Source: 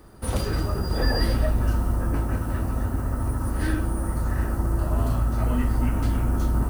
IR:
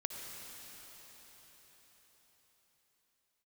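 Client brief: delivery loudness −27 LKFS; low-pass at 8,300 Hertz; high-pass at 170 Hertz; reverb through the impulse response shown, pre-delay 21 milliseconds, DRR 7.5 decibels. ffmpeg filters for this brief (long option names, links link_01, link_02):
-filter_complex "[0:a]highpass=170,lowpass=8300,asplit=2[link_01][link_02];[1:a]atrim=start_sample=2205,adelay=21[link_03];[link_02][link_03]afir=irnorm=-1:irlink=0,volume=-8dB[link_04];[link_01][link_04]amix=inputs=2:normalize=0,volume=3.5dB"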